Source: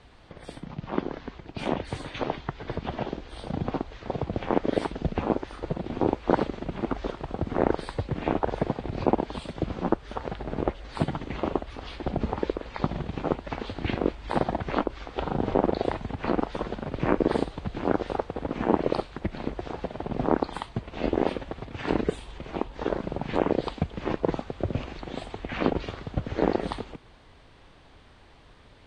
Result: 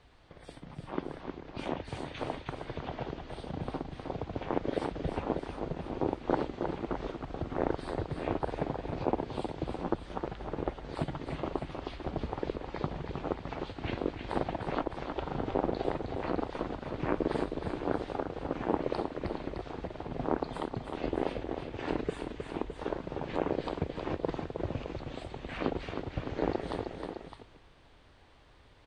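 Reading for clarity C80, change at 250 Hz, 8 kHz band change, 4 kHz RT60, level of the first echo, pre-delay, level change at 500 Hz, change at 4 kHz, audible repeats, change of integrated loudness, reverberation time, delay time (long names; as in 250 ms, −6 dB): no reverb audible, −6.5 dB, can't be measured, no reverb audible, −6.5 dB, no reverb audible, −6.0 dB, −5.5 dB, 2, −6.0 dB, no reverb audible, 313 ms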